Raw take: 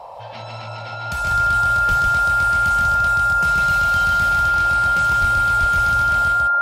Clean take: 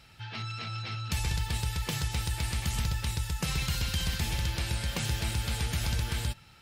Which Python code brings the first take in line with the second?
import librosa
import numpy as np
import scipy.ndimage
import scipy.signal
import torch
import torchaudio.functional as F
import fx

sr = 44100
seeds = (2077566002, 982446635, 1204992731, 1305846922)

y = fx.notch(x, sr, hz=1400.0, q=30.0)
y = fx.highpass(y, sr, hz=140.0, slope=24, at=(1.88, 2.0), fade=0.02)
y = fx.highpass(y, sr, hz=140.0, slope=24, at=(5.2, 5.32), fade=0.02)
y = fx.highpass(y, sr, hz=140.0, slope=24, at=(5.6, 5.72), fade=0.02)
y = fx.noise_reduce(y, sr, print_start_s=0.0, print_end_s=0.5, reduce_db=8.0)
y = fx.fix_echo_inverse(y, sr, delay_ms=151, level_db=-3.0)